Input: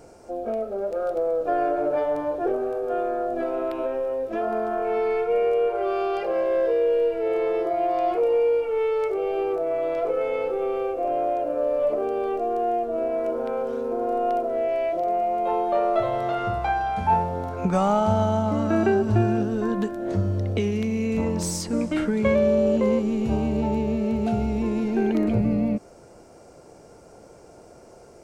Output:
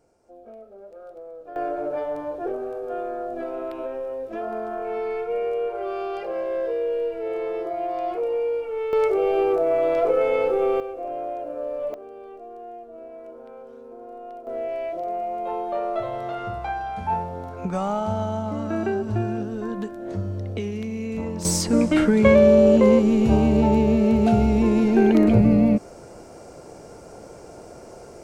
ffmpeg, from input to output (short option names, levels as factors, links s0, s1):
-af "asetnsamples=n=441:p=0,asendcmd='1.56 volume volume -4dB;8.93 volume volume 4.5dB;10.8 volume volume -6dB;11.94 volume volume -15dB;14.47 volume volume -4.5dB;21.45 volume volume 6dB',volume=0.158"